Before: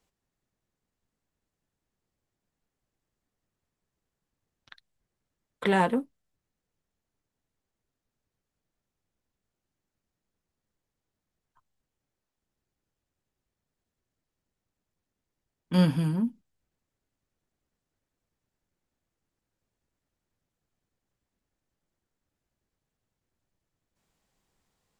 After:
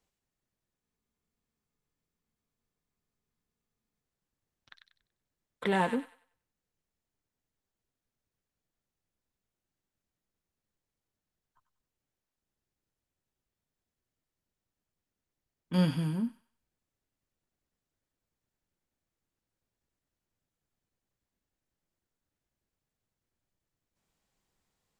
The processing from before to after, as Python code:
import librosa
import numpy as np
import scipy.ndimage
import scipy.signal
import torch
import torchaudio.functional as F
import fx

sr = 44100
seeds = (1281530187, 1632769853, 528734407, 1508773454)

y = fx.echo_wet_highpass(x, sr, ms=95, feedback_pct=31, hz=1700.0, wet_db=-5)
y = fx.spec_freeze(y, sr, seeds[0], at_s=0.83, hold_s=3.21)
y = y * 10.0 ** (-4.5 / 20.0)